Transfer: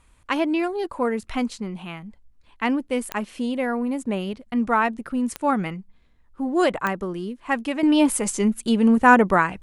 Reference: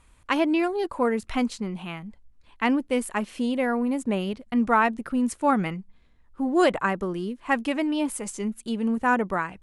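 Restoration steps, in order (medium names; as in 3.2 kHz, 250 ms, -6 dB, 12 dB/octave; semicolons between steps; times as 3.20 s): de-click; trim 0 dB, from 7.83 s -8.5 dB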